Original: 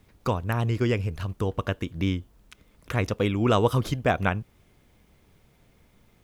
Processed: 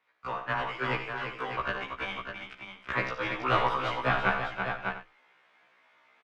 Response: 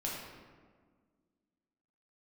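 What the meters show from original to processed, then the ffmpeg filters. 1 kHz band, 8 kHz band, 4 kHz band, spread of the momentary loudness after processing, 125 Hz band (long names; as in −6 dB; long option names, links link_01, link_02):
+1.5 dB, below −10 dB, −1.0 dB, 12 LU, −14.0 dB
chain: -filter_complex "[0:a]highpass=1300,aeval=exprs='clip(val(0),-1,0.0188)':channel_layout=same,asplit=2[link_01][link_02];[link_02]aecho=0:1:59|332|598:0.282|0.447|0.422[link_03];[link_01][link_03]amix=inputs=2:normalize=0,dynaudnorm=framelen=240:gausssize=3:maxgain=9dB,afreqshift=13,lowpass=1800,asplit=2[link_04][link_05];[link_05]aecho=0:1:90:0.266[link_06];[link_04][link_06]amix=inputs=2:normalize=0,afftfilt=real='re*1.73*eq(mod(b,3),0)':imag='im*1.73*eq(mod(b,3),0)':win_size=2048:overlap=0.75,volume=3dB"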